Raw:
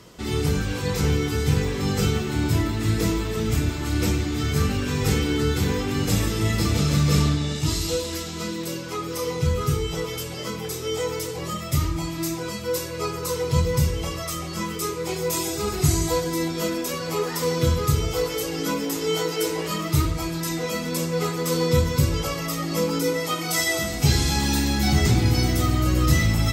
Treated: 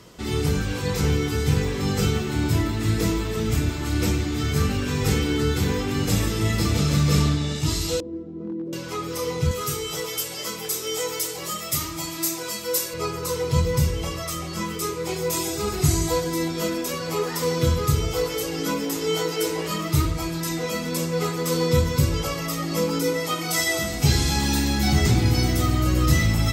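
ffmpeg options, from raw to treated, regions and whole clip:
ffmpeg -i in.wav -filter_complex "[0:a]asettb=1/sr,asplit=3[link_01][link_02][link_03];[link_01]atrim=end=8.004[link_04];[link_02]atrim=start=8:end=8.73,asetpts=PTS-STARTPTS,afade=type=in:duration=0.004:curve=qsin,afade=type=out:start_time=0.726:duration=0.004:curve=qsin,lowpass=frequency=320:width_type=q:width=2,aemphasis=mode=production:type=bsi,asoftclip=type=hard:threshold=-24.5dB[link_05];[link_03]atrim=start=8.726[link_06];[link_04][link_05]acrossfade=duration=0.004:curve1=hsin:curve2=qsin[link_07];[link_07][link_06]acrossfade=duration=0.004:curve1=qsin:curve2=hsin,asettb=1/sr,asplit=3[link_08][link_09][link_10];[link_08]atrim=end=9.514[link_11];[link_09]atrim=start=9.51:end=12.94,asetpts=PTS-STARTPTS,afade=type=in:duration=0.004:curve=qsin,afade=type=out:start_time=3.426:duration=0.004:curve=qsin,highpass=frequency=370:poles=1,aemphasis=mode=production:type=cd,aecho=1:1:264:0.188,atrim=end_sample=151263[link_12];[link_10]atrim=start=12.936[link_13];[link_11][link_12]acrossfade=duration=0.004:curve1=hsin:curve2=qsin[link_14];[link_14][link_13]acrossfade=duration=0.004:curve1=qsin:curve2=hsin" out.wav

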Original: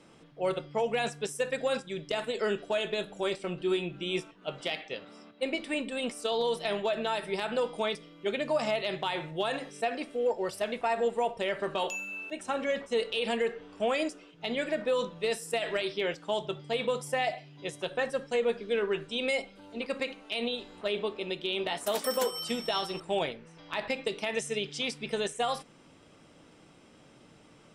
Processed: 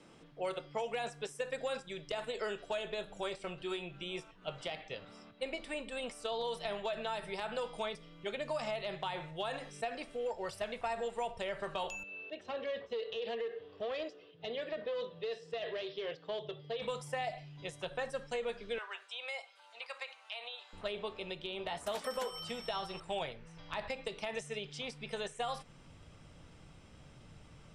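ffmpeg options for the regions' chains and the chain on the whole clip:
ffmpeg -i in.wav -filter_complex "[0:a]asettb=1/sr,asplit=3[link_01][link_02][link_03];[link_01]atrim=end=12.034[link_04];[link_02]atrim=start=12.03:end=16.82,asetpts=PTS-STARTPTS,afade=type=in:duration=0.004:curve=qsin,afade=type=out:start_time=4.786:duration=0.004:curve=qsin,aeval=exprs='clip(val(0),-1,0.0398)':channel_layout=same,highpass=160,equalizer=frequency=190:width_type=q:width=4:gain=-9,equalizer=frequency=280:width_type=q:width=4:gain=-5,equalizer=frequency=440:width_type=q:width=4:gain=8,equalizer=frequency=890:width_type=q:width=4:gain=-8,equalizer=frequency=1400:width_type=q:width=4:gain=-10,equalizer=frequency=2300:width_type=q:width=4:gain=-8,lowpass=frequency=4100:width=0.5412,lowpass=frequency=4100:width=1.3066,acompressor=threshold=-28dB:ratio=2.5:attack=3.2:release=140:knee=1:detection=peak[link_05];[link_03]atrim=start=16.816[link_06];[link_04][link_05]acrossfade=duration=0.004:curve1=hsin:curve2=qsin[link_07];[link_07][link_06]acrossfade=duration=0.004:curve1=qsin:curve2=hsin,asettb=1/sr,asplit=3[link_08][link_09][link_10];[link_08]atrim=end=18.784[link_11];[link_09]atrim=start=18.78:end=20.73,asetpts=PTS-STARTPTS,afade=type=in:duration=0.004:curve=qsin,afade=type=out:start_time=1.946:duration=0.004:curve=qsin,highpass=frequency=760:width=0.5412,highpass=frequency=760:width=1.3066,acrossover=split=4500[link_12][link_13];[link_13]acompressor=threshold=-52dB:ratio=4:attack=1:release=60[link_14];[link_12][link_14]amix=inputs=2:normalize=0[link_15];[link_10]atrim=start=20.726[link_16];[link_11][link_15]acrossfade=duration=0.004:curve1=hsin:curve2=qsin[link_17];[link_17][link_16]acrossfade=duration=0.004:curve1=qsin:curve2=hsin,lowpass=11000,asubboost=boost=8:cutoff=99,acrossover=split=430|1300|3800[link_18][link_19][link_20][link_21];[link_18]acompressor=threshold=-47dB:ratio=4[link_22];[link_19]acompressor=threshold=-34dB:ratio=4[link_23];[link_20]acompressor=threshold=-44dB:ratio=4[link_24];[link_21]acompressor=threshold=-50dB:ratio=4[link_25];[link_22][link_23][link_24][link_25]amix=inputs=4:normalize=0,volume=-2dB" out.wav

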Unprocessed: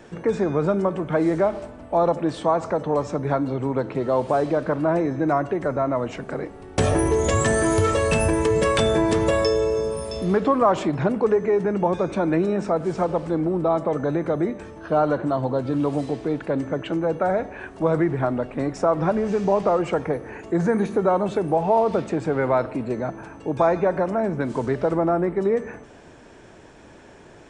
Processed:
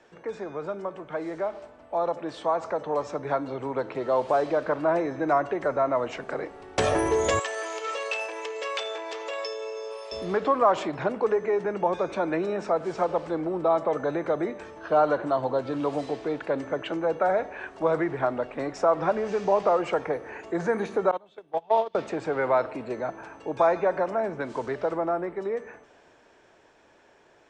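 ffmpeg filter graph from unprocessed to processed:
ffmpeg -i in.wav -filter_complex "[0:a]asettb=1/sr,asplit=3[link_01][link_02][link_03];[link_01]atrim=end=7.394[link_04];[link_02]atrim=start=7.39:end=10.12,asetpts=PTS-STARTPTS,afade=type=in:duration=0.004:curve=qsin,afade=type=out:start_time=2.726:duration=0.004:curve=qsin,acompressor=threshold=-22dB:ratio=3:attack=3.2:release=140:knee=1:detection=peak,aeval=exprs='0.141*(abs(mod(val(0)/0.141+3,4)-2)-1)':channel_layout=same,highpass=frequency=480:width=0.5412,highpass=frequency=480:width=1.3066,equalizer=frequency=610:width_type=q:width=4:gain=-6,equalizer=frequency=1000:width_type=q:width=4:gain=-4,equalizer=frequency=1600:width_type=q:width=4:gain=-5,equalizer=frequency=2700:width_type=q:width=4:gain=4,lowpass=frequency=7200:width=0.5412,lowpass=frequency=7200:width=1.3066[link_05];[link_03]atrim=start=10.116[link_06];[link_04][link_05]acrossfade=duration=0.004:curve1=hsin:curve2=qsin[link_07];[link_07][link_06]acrossfade=duration=0.004:curve1=qsin:curve2=hsin,asettb=1/sr,asplit=3[link_08][link_09][link_10];[link_08]atrim=end=21.114[link_11];[link_09]atrim=start=21.11:end=21.95,asetpts=PTS-STARTPTS,afade=type=in:duration=0.004:curve=qsin,afade=type=out:start_time=0.836:duration=0.004:curve=qsin,agate=range=-27dB:threshold=-18dB:ratio=16:release=100:detection=peak,equalizer=frequency=3400:width_type=o:width=0.45:gain=13[link_12];[link_10]atrim=start=21.946[link_13];[link_11][link_12]acrossfade=duration=0.004:curve1=hsin:curve2=qsin[link_14];[link_14][link_13]acrossfade=duration=0.004:curve1=qsin:curve2=hsin,acrossover=split=390 7900:gain=0.251 1 0.0794[link_15][link_16][link_17];[link_15][link_16][link_17]amix=inputs=3:normalize=0,dynaudnorm=framelen=160:gausssize=31:maxgain=11.5dB,volume=-8.5dB" out.wav

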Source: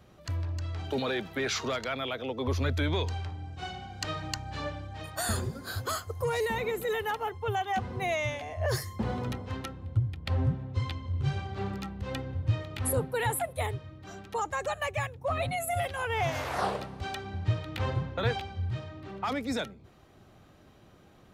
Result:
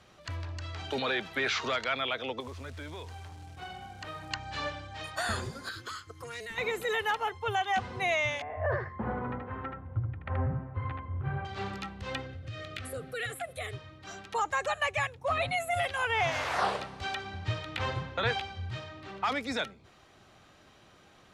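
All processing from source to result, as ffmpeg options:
ffmpeg -i in.wav -filter_complex "[0:a]asettb=1/sr,asplit=3[link_01][link_02][link_03];[link_01]atrim=end=2.404[link_04];[link_02]atrim=start=2.4:end=4.31,asetpts=PTS-STARTPTS,afade=type=in:duration=0.004:curve=qsin,afade=type=out:start_time=1.906:duration=0.004:curve=qsin,lowpass=frequency=1200:poles=1,acompressor=threshold=-38dB:ratio=3:attack=3.2:release=140:knee=1:detection=peak,acrusher=bits=6:mode=log:mix=0:aa=0.000001[link_05];[link_03]atrim=start=4.306[link_06];[link_04][link_05]acrossfade=duration=0.004:curve1=hsin:curve2=qsin[link_07];[link_07][link_06]acrossfade=duration=0.004:curve1=qsin:curve2=hsin,asettb=1/sr,asplit=3[link_08][link_09][link_10];[link_08]atrim=end=5.694[link_11];[link_09]atrim=start=5.69:end=6.58,asetpts=PTS-STARTPTS,afade=type=in:duration=0.004:curve=qsin,afade=type=out:start_time=0.886:duration=0.004:curve=qsin,asuperstop=centerf=710:order=4:qfactor=1.1,tremolo=f=230:d=0.621,acrossover=split=140|5800[link_12][link_13][link_14];[link_12]acompressor=threshold=-47dB:ratio=4[link_15];[link_13]acompressor=threshold=-41dB:ratio=4[link_16];[link_14]acompressor=threshold=-58dB:ratio=4[link_17];[link_15][link_16][link_17]amix=inputs=3:normalize=0[link_18];[link_10]atrim=start=6.576[link_19];[link_11][link_18]acrossfade=duration=0.004:curve1=hsin:curve2=qsin[link_20];[link_20][link_19]acrossfade=duration=0.004:curve1=qsin:curve2=hsin,asettb=1/sr,asplit=3[link_21][link_22][link_23];[link_21]atrim=end=8.424[link_24];[link_22]atrim=start=8.42:end=11.45,asetpts=PTS-STARTPTS,afade=type=in:duration=0.004:curve=qsin,afade=type=out:start_time=3.026:duration=0.004:curve=qsin,lowpass=frequency=1700:width=0.5412,lowpass=frequency=1700:width=1.3066,aecho=1:1:78:0.631,atrim=end_sample=133623[link_25];[link_23]atrim=start=11.446[link_26];[link_24][link_25]acrossfade=duration=0.004:curve1=hsin:curve2=qsin[link_27];[link_27][link_26]acrossfade=duration=0.004:curve1=qsin:curve2=hsin,asettb=1/sr,asplit=3[link_28][link_29][link_30];[link_28]atrim=end=12.264[link_31];[link_29]atrim=start=12.26:end=13.73,asetpts=PTS-STARTPTS,afade=type=in:duration=0.004:curve=qsin,afade=type=out:start_time=1.466:duration=0.004:curve=qsin,asuperstop=centerf=930:order=8:qfactor=2.9,acompressor=threshold=-35dB:ratio=2.5:attack=3.2:release=140:knee=1:detection=peak[link_32];[link_30]atrim=start=13.726[link_33];[link_31][link_32]acrossfade=duration=0.004:curve1=hsin:curve2=qsin[link_34];[link_34][link_33]acrossfade=duration=0.004:curve1=qsin:curve2=hsin,lowpass=8700,tiltshelf=frequency=670:gain=-6,acrossover=split=3600[link_35][link_36];[link_36]acompressor=threshold=-43dB:ratio=4:attack=1:release=60[link_37];[link_35][link_37]amix=inputs=2:normalize=0" out.wav

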